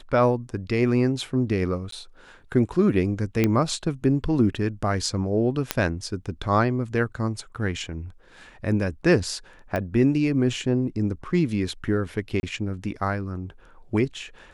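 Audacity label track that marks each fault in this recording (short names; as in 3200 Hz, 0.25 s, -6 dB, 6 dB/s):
1.910000	1.920000	gap 13 ms
3.440000	3.440000	pop -8 dBFS
5.710000	5.710000	pop -4 dBFS
9.760000	9.760000	pop -15 dBFS
12.400000	12.430000	gap 31 ms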